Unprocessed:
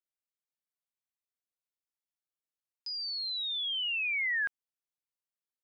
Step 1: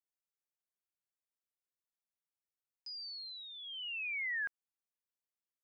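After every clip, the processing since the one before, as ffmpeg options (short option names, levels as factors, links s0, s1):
-af "equalizer=f=3600:t=o:w=0.5:g=-9.5,volume=0.531"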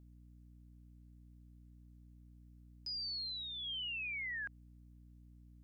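-af "alimiter=level_in=8.41:limit=0.0631:level=0:latency=1,volume=0.119,aeval=exprs='val(0)+0.000794*(sin(2*PI*60*n/s)+sin(2*PI*2*60*n/s)/2+sin(2*PI*3*60*n/s)/3+sin(2*PI*4*60*n/s)/4+sin(2*PI*5*60*n/s)/5)':c=same,volume=1.68"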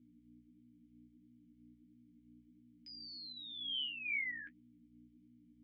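-filter_complex "[0:a]asplit=3[s0][s1][s2];[s0]bandpass=f=270:t=q:w=8,volume=1[s3];[s1]bandpass=f=2290:t=q:w=8,volume=0.501[s4];[s2]bandpass=f=3010:t=q:w=8,volume=0.355[s5];[s3][s4][s5]amix=inputs=3:normalize=0,flanger=delay=8.6:depth=8.2:regen=31:speed=1.5:shape=sinusoidal,volume=5.62"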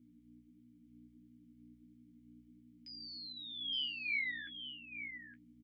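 -af "aecho=1:1:866:0.335,volume=1.19"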